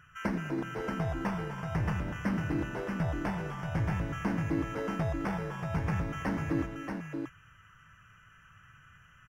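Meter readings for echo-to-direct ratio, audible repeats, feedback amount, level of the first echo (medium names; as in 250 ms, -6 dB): -4.0 dB, 5, no regular repeats, -17.0 dB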